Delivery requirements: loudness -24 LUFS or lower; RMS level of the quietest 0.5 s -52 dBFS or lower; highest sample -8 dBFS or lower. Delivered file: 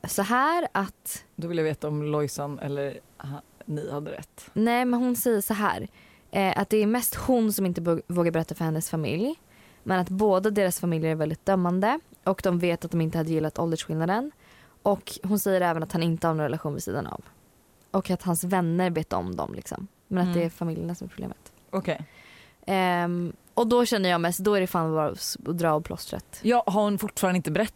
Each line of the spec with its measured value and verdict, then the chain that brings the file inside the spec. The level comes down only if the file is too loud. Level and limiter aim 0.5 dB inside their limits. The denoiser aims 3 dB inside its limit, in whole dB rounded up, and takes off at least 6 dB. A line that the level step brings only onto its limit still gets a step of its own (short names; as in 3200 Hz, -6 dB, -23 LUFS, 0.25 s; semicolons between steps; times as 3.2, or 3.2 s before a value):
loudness -26.5 LUFS: OK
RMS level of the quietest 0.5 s -60 dBFS: OK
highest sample -11.5 dBFS: OK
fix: none